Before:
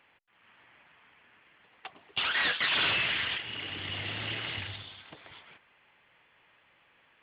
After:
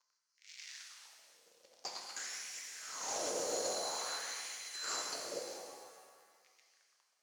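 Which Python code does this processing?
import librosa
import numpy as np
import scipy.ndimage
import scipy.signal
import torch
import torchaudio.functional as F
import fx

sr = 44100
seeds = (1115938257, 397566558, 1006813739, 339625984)

p1 = fx.band_swap(x, sr, width_hz=4000)
p2 = scipy.signal.sosfilt(scipy.signal.butter(2, 90.0, 'highpass', fs=sr, output='sos'), p1)
p3 = fx.leveller(p2, sr, passes=5)
p4 = fx.rotary(p3, sr, hz=1.0)
p5 = (np.mod(10.0 ** (25.0 / 20.0) * p4 + 1.0, 2.0) - 1.0) / 10.0 ** (25.0 / 20.0)
p6 = p4 + (p5 * 10.0 ** (-11.0 / 20.0))
p7 = fx.filter_lfo_bandpass(p6, sr, shape='sine', hz=0.5, low_hz=490.0, high_hz=2200.0, q=4.8)
p8 = fx.over_compress(p7, sr, threshold_db=-57.0, ratio=-1.0)
p9 = fx.rev_shimmer(p8, sr, seeds[0], rt60_s=1.8, semitones=7, shimmer_db=-8, drr_db=0.5)
y = p9 * 10.0 ** (11.5 / 20.0)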